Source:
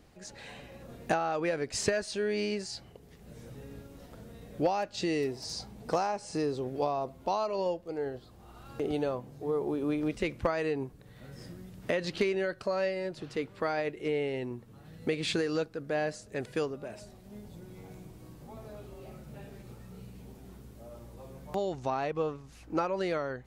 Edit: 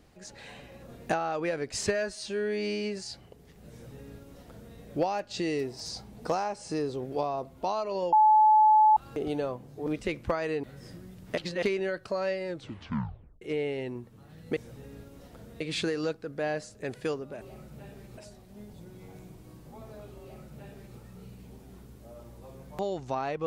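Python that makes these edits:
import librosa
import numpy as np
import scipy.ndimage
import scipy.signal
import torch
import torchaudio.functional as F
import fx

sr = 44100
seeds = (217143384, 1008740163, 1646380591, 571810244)

y = fx.edit(x, sr, fx.stretch_span(start_s=1.87, length_s=0.73, factor=1.5),
    fx.duplicate(start_s=3.35, length_s=1.04, to_s=15.12),
    fx.bleep(start_s=7.76, length_s=0.84, hz=861.0, db=-16.0),
    fx.cut(start_s=9.5, length_s=0.52),
    fx.cut(start_s=10.79, length_s=0.4),
    fx.reverse_span(start_s=11.93, length_s=0.25),
    fx.tape_stop(start_s=13.02, length_s=0.95),
    fx.duplicate(start_s=18.97, length_s=0.76, to_s=16.93), tone=tone)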